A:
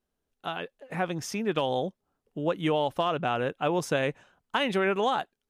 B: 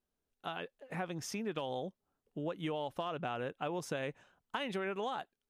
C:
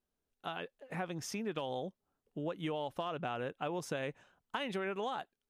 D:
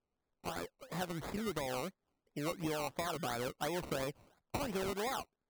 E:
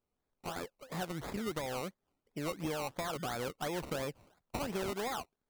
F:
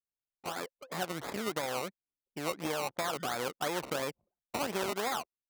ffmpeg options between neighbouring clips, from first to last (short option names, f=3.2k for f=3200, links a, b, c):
-af "acompressor=threshold=-30dB:ratio=3,volume=-5.5dB"
-af anull
-af "acrusher=samples=21:mix=1:aa=0.000001:lfo=1:lforange=12.6:lforate=2.9"
-af "aeval=exprs='clip(val(0),-1,0.0224)':c=same,volume=1dB"
-af "aeval=exprs='0.0596*(cos(1*acos(clip(val(0)/0.0596,-1,1)))-cos(1*PI/2))+0.00944*(cos(4*acos(clip(val(0)/0.0596,-1,1)))-cos(4*PI/2))':c=same,anlmdn=0.00158,highpass=f=400:p=1,volume=4.5dB"